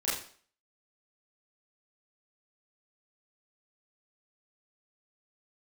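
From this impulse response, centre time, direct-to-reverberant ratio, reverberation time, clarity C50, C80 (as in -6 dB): 51 ms, -10.0 dB, 0.50 s, 3.5 dB, 8.0 dB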